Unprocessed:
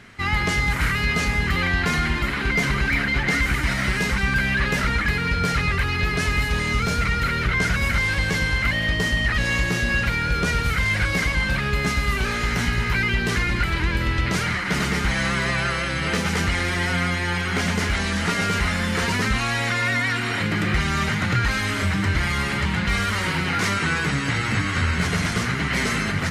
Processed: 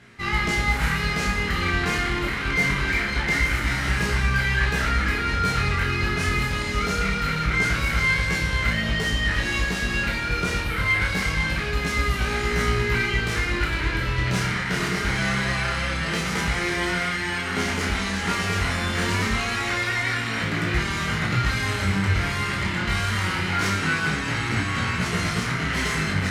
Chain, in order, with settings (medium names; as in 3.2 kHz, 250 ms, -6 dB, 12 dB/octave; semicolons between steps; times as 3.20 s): 10.60–11.02 s: peaking EQ 6.2 kHz -14.5 dB 0.59 oct; Chebyshev shaper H 7 -31 dB, 8 -28 dB, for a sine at -9.5 dBFS; chorus 0.24 Hz, delay 17 ms, depth 5.7 ms; flutter echo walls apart 5.4 m, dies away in 0.32 s; reverberation RT60 2.8 s, pre-delay 20 ms, DRR 8 dB